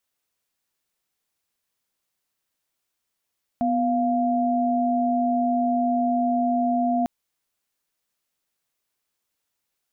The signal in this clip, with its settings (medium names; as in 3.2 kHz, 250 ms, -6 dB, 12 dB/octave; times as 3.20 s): chord B3/F5 sine, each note -22 dBFS 3.45 s